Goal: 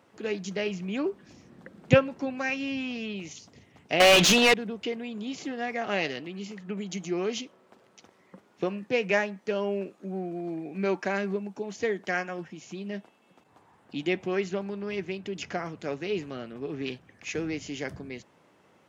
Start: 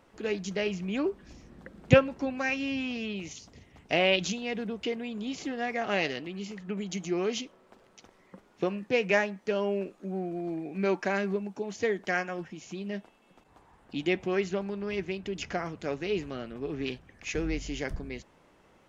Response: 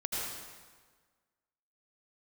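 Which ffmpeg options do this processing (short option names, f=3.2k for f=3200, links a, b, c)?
-filter_complex "[0:a]highpass=f=93:w=0.5412,highpass=f=93:w=1.3066,asettb=1/sr,asplit=3[a][b][c];[a]atrim=end=4.004[d];[b]atrim=start=4:end=4.54,asetpts=PTS-STARTPTS,afade=t=in:d=0.004:c=qsin,afade=t=out:st=0.536:d=0.004:c=qsin,asplit=2[e][f];[f]highpass=f=720:p=1,volume=32dB,asoftclip=type=tanh:threshold=-10dB[g];[e][g]amix=inputs=2:normalize=0,lowpass=f=5.1k:p=1,volume=-6dB[h];[c]atrim=start=4.536[i];[d][h]acrossfade=d=0.004:c1=hsin:c2=qsin[j];[j][i]acrossfade=d=0.004:c1=qsin:c2=hsin"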